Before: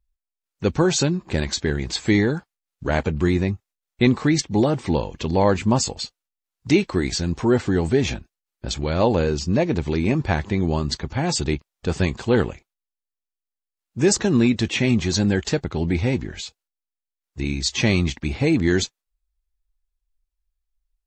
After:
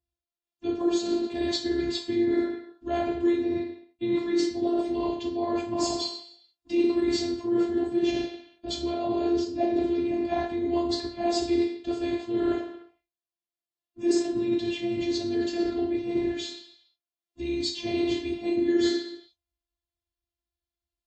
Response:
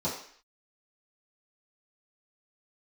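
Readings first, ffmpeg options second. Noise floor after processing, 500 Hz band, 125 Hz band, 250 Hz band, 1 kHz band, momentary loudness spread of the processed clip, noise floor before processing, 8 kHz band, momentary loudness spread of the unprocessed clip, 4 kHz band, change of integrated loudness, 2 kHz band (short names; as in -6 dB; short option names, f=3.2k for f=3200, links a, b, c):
under -85 dBFS, -4.0 dB, -21.5 dB, -4.0 dB, -5.5 dB, 8 LU, under -85 dBFS, -13.0 dB, 9 LU, -6.0 dB, -6.0 dB, -12.5 dB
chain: -filter_complex "[1:a]atrim=start_sample=2205,asetrate=32634,aresample=44100[a];[0:a][a]afir=irnorm=-1:irlink=0,areverse,acompressor=threshold=-11dB:ratio=16,areverse,afftfilt=real='hypot(re,im)*cos(PI*b)':imag='0':win_size=512:overlap=0.75,highpass=81,volume=-6dB"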